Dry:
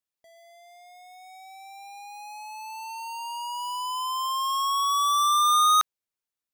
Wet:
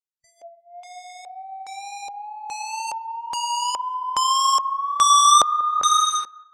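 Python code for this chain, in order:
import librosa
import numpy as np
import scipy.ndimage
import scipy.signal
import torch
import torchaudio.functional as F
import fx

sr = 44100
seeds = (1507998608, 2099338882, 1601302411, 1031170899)

y = fx.notch(x, sr, hz=3300.0, q=17.0)
y = fx.rev_gated(y, sr, seeds[0], gate_ms=450, shape='flat', drr_db=5.0)
y = fx.wow_flutter(y, sr, seeds[1], rate_hz=2.1, depth_cents=19.0)
y = fx.filter_lfo_lowpass(y, sr, shape='square', hz=1.2, low_hz=620.0, high_hz=7200.0, q=2.3)
y = fx.echo_wet_lowpass(y, sr, ms=190, feedback_pct=37, hz=1900.0, wet_db=-20.0)
y = fx.noise_reduce_blind(y, sr, reduce_db=22)
y = fx.high_shelf(y, sr, hz=8900.0, db=7.5, at=(2.87, 3.36))
y = y * 10.0 ** (7.0 / 20.0)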